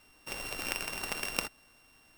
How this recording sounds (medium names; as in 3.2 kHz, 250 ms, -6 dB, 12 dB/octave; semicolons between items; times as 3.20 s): a buzz of ramps at a fixed pitch in blocks of 16 samples